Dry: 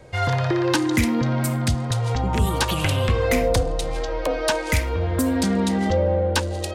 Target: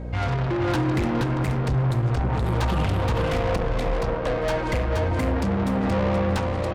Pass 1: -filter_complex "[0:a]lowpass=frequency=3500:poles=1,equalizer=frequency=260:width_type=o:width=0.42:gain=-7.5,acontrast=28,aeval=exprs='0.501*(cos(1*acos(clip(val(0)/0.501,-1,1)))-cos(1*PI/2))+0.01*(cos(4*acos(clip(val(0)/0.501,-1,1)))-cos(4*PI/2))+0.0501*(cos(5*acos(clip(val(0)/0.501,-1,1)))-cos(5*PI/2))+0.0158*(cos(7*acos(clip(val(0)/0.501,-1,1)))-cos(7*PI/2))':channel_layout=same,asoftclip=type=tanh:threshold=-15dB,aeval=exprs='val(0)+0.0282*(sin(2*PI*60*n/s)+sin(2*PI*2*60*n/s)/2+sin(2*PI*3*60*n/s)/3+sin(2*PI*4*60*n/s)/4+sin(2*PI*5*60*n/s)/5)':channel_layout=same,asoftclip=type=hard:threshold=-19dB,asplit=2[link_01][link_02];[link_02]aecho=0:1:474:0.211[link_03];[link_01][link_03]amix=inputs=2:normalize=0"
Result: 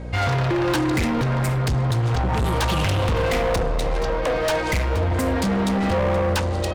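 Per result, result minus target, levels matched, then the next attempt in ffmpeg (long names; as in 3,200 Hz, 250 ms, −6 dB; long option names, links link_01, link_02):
echo-to-direct −10 dB; 4,000 Hz band +4.5 dB; soft clipping: distortion −6 dB
-filter_complex "[0:a]lowpass=frequency=3500:poles=1,equalizer=frequency=260:width_type=o:width=0.42:gain=-7.5,acontrast=28,aeval=exprs='0.501*(cos(1*acos(clip(val(0)/0.501,-1,1)))-cos(1*PI/2))+0.01*(cos(4*acos(clip(val(0)/0.501,-1,1)))-cos(4*PI/2))+0.0501*(cos(5*acos(clip(val(0)/0.501,-1,1)))-cos(5*PI/2))+0.0158*(cos(7*acos(clip(val(0)/0.501,-1,1)))-cos(7*PI/2))':channel_layout=same,asoftclip=type=tanh:threshold=-15dB,aeval=exprs='val(0)+0.0282*(sin(2*PI*60*n/s)+sin(2*PI*2*60*n/s)/2+sin(2*PI*3*60*n/s)/3+sin(2*PI*4*60*n/s)/4+sin(2*PI*5*60*n/s)/5)':channel_layout=same,asoftclip=type=hard:threshold=-19dB,asplit=2[link_01][link_02];[link_02]aecho=0:1:474:0.668[link_03];[link_01][link_03]amix=inputs=2:normalize=0"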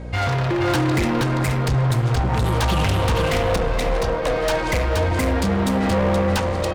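4,000 Hz band +4.5 dB; soft clipping: distortion −6 dB
-filter_complex "[0:a]lowpass=frequency=1000:poles=1,equalizer=frequency=260:width_type=o:width=0.42:gain=-7.5,acontrast=28,aeval=exprs='0.501*(cos(1*acos(clip(val(0)/0.501,-1,1)))-cos(1*PI/2))+0.01*(cos(4*acos(clip(val(0)/0.501,-1,1)))-cos(4*PI/2))+0.0501*(cos(5*acos(clip(val(0)/0.501,-1,1)))-cos(5*PI/2))+0.0158*(cos(7*acos(clip(val(0)/0.501,-1,1)))-cos(7*PI/2))':channel_layout=same,asoftclip=type=tanh:threshold=-15dB,aeval=exprs='val(0)+0.0282*(sin(2*PI*60*n/s)+sin(2*PI*2*60*n/s)/2+sin(2*PI*3*60*n/s)/3+sin(2*PI*4*60*n/s)/4+sin(2*PI*5*60*n/s)/5)':channel_layout=same,asoftclip=type=hard:threshold=-19dB,asplit=2[link_01][link_02];[link_02]aecho=0:1:474:0.668[link_03];[link_01][link_03]amix=inputs=2:normalize=0"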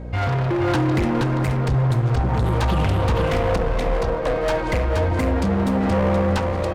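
soft clipping: distortion −7 dB
-filter_complex "[0:a]lowpass=frequency=1000:poles=1,equalizer=frequency=260:width_type=o:width=0.42:gain=-7.5,acontrast=28,aeval=exprs='0.501*(cos(1*acos(clip(val(0)/0.501,-1,1)))-cos(1*PI/2))+0.01*(cos(4*acos(clip(val(0)/0.501,-1,1)))-cos(4*PI/2))+0.0501*(cos(5*acos(clip(val(0)/0.501,-1,1)))-cos(5*PI/2))+0.0158*(cos(7*acos(clip(val(0)/0.501,-1,1)))-cos(7*PI/2))':channel_layout=same,asoftclip=type=tanh:threshold=-23dB,aeval=exprs='val(0)+0.0282*(sin(2*PI*60*n/s)+sin(2*PI*2*60*n/s)/2+sin(2*PI*3*60*n/s)/3+sin(2*PI*4*60*n/s)/4+sin(2*PI*5*60*n/s)/5)':channel_layout=same,asoftclip=type=hard:threshold=-19dB,asplit=2[link_01][link_02];[link_02]aecho=0:1:474:0.668[link_03];[link_01][link_03]amix=inputs=2:normalize=0"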